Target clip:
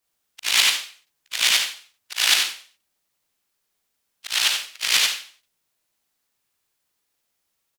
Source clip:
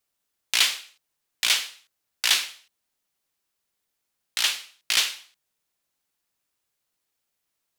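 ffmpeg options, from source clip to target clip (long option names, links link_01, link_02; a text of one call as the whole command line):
ffmpeg -i in.wav -filter_complex "[0:a]afftfilt=real='re':imag='-im':win_size=8192:overlap=0.75,asplit=2[link_01][link_02];[link_02]asetrate=37084,aresample=44100,atempo=1.18921,volume=-9dB[link_03];[link_01][link_03]amix=inputs=2:normalize=0,volume=8dB" out.wav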